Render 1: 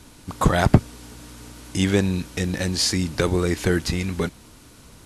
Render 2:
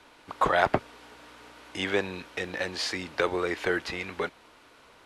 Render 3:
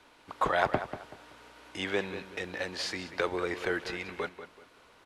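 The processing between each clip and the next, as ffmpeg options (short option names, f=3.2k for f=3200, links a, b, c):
-filter_complex "[0:a]acrossover=split=410 3600:gain=0.0891 1 0.126[a][b][c];[a][b][c]amix=inputs=3:normalize=0"
-filter_complex "[0:a]asplit=2[a][b];[b]adelay=190,lowpass=f=3.5k:p=1,volume=-11dB,asplit=2[c][d];[d]adelay=190,lowpass=f=3.5k:p=1,volume=0.31,asplit=2[e][f];[f]adelay=190,lowpass=f=3.5k:p=1,volume=0.31[g];[a][c][e][g]amix=inputs=4:normalize=0,volume=-4dB"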